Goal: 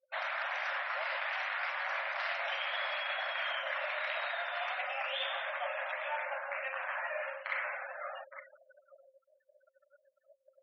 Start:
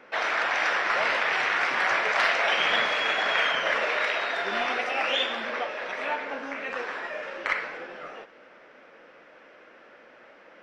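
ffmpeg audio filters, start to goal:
-filter_complex "[0:a]asplit=2[s0][s1];[s1]adelay=867,lowpass=f=1300:p=1,volume=0.158,asplit=2[s2][s3];[s3]adelay=867,lowpass=f=1300:p=1,volume=0.25[s4];[s2][s4]amix=inputs=2:normalize=0[s5];[s0][s5]amix=inputs=2:normalize=0,acrossover=split=6000[s6][s7];[s7]acompressor=threshold=0.00141:ratio=4:attack=1:release=60[s8];[s6][s8]amix=inputs=2:normalize=0,afftfilt=real='re*gte(hypot(re,im),0.0126)':imag='im*gte(hypot(re,im),0.0126)':win_size=1024:overlap=0.75,agate=range=0.0224:threshold=0.00251:ratio=3:detection=peak,areverse,acompressor=threshold=0.0224:ratio=8,areverse,afftfilt=real='re*between(b*sr/4096,520,7700)':imag='im*between(b*sr/4096,520,7700)':win_size=4096:overlap=0.75"

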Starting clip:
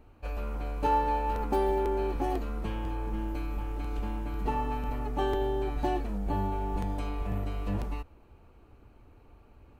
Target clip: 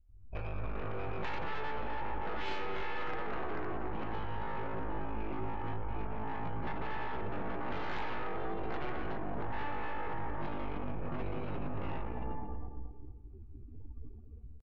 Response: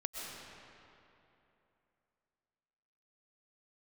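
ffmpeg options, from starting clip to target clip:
-filter_complex "[0:a]bandreject=f=65.08:t=h:w=4,bandreject=f=130.16:t=h:w=4,bandreject=f=195.24:t=h:w=4,bandreject=f=260.32:t=h:w=4,bandreject=f=325.4:t=h:w=4,bandreject=f=390.48:t=h:w=4,bandreject=f=455.56:t=h:w=4,bandreject=f=520.64:t=h:w=4,bandreject=f=585.72:t=h:w=4,bandreject=f=650.8:t=h:w=4,bandreject=f=715.88:t=h:w=4,bandreject=f=780.96:t=h:w=4,bandreject=f=846.04:t=h:w=4,bandreject=f=911.12:t=h:w=4,bandreject=f=976.2:t=h:w=4,bandreject=f=1041.28:t=h:w=4,bandreject=f=1106.36:t=h:w=4,bandreject=f=1171.44:t=h:w=4,bandreject=f=1236.52:t=h:w=4,bandreject=f=1301.6:t=h:w=4,bandreject=f=1366.68:t=h:w=4,bandreject=f=1431.76:t=h:w=4[s0];[1:a]atrim=start_sample=2205,asetrate=88200,aresample=44100[s1];[s0][s1]afir=irnorm=-1:irlink=0,atempo=0.67,aeval=exprs='0.075*(cos(1*acos(clip(val(0)/0.075,-1,1)))-cos(1*PI/2))+0.00841*(cos(3*acos(clip(val(0)/0.075,-1,1)))-cos(3*PI/2))+0.000668*(cos(5*acos(clip(val(0)/0.075,-1,1)))-cos(5*PI/2))+0.0299*(cos(6*acos(clip(val(0)/0.075,-1,1)))-cos(6*PI/2))+0.000596*(cos(7*acos(clip(val(0)/0.075,-1,1)))-cos(7*PI/2))':c=same,alimiter=level_in=1.88:limit=0.0631:level=0:latency=1:release=41,volume=0.531,afftdn=nr=31:nf=-56,acompressor=threshold=0.00501:ratio=10,highshelf=f=6300:g=-7,dynaudnorm=f=160:g=3:m=2.82,aresample=16000,asoftclip=type=tanh:threshold=0.0112,aresample=44100,asplit=2[s2][s3];[s3]adelay=227,lowpass=f=1500:p=1,volume=0.422,asplit=2[s4][s5];[s5]adelay=227,lowpass=f=1500:p=1,volume=0.33,asplit=2[s6][s7];[s7]adelay=227,lowpass=f=1500:p=1,volume=0.33,asplit=2[s8][s9];[s9]adelay=227,lowpass=f=1500:p=1,volume=0.33[s10];[s2][s4][s6][s8][s10]amix=inputs=5:normalize=0,volume=2.82"

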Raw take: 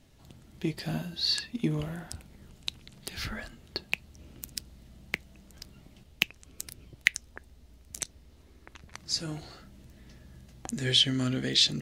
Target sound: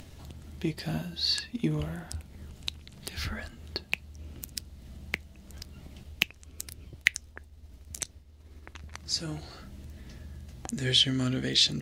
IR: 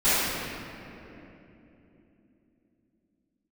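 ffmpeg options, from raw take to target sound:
-filter_complex "[0:a]asplit=3[s0][s1][s2];[s0]afade=t=out:st=6.88:d=0.02[s3];[s1]agate=range=0.0224:threshold=0.00398:ratio=3:detection=peak,afade=t=in:st=6.88:d=0.02,afade=t=out:st=9.01:d=0.02[s4];[s2]afade=t=in:st=9.01:d=0.02[s5];[s3][s4][s5]amix=inputs=3:normalize=0,equalizer=f=79:w=3.8:g=10,acompressor=mode=upward:threshold=0.0126:ratio=2.5"

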